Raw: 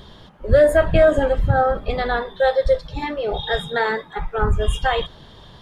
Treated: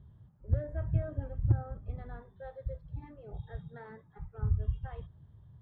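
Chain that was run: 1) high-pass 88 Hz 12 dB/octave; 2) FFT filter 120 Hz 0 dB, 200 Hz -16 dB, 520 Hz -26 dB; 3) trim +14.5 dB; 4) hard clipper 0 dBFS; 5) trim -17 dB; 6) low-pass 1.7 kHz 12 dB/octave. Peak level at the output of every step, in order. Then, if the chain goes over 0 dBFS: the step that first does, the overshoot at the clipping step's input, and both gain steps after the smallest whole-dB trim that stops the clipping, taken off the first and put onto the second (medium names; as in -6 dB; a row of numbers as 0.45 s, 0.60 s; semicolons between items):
-4.5 dBFS, -9.5 dBFS, +5.0 dBFS, 0.0 dBFS, -17.0 dBFS, -17.0 dBFS; step 3, 5.0 dB; step 3 +9.5 dB, step 5 -12 dB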